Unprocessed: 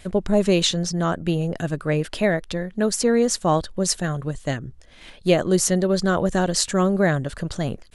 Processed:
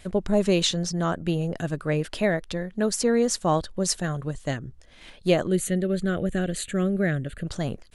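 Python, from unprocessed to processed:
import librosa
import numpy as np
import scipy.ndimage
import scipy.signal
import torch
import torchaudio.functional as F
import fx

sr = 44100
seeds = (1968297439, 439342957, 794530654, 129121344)

y = fx.fixed_phaser(x, sr, hz=2300.0, stages=4, at=(5.47, 7.47))
y = F.gain(torch.from_numpy(y), -3.0).numpy()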